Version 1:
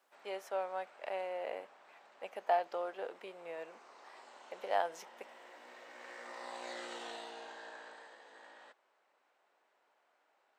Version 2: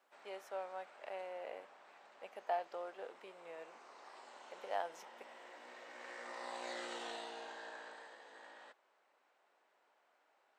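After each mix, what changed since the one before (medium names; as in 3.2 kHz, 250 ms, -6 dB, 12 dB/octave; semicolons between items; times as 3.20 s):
speech -6.5 dB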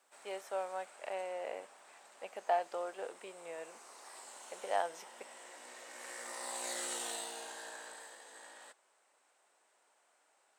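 speech +5.5 dB; background: remove distance through air 190 m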